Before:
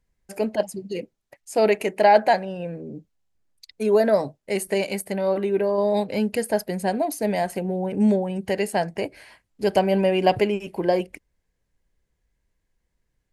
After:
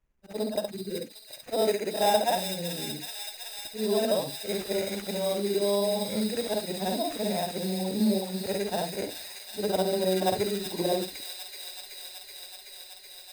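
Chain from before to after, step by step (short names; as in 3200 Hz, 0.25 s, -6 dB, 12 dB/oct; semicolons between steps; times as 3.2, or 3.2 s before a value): short-time reversal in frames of 0.139 s; high shelf 2200 Hz -9.5 dB; in parallel at -2 dB: compressor, threshold -33 dBFS, peak gain reduction 17 dB; on the sum: companded quantiser 8-bit; flange 0.2 Hz, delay 2.7 ms, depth 7.5 ms, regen -80%; sample-rate reducer 4400 Hz, jitter 0%; on a send: thin delay 0.377 s, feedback 84%, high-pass 2500 Hz, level -3 dB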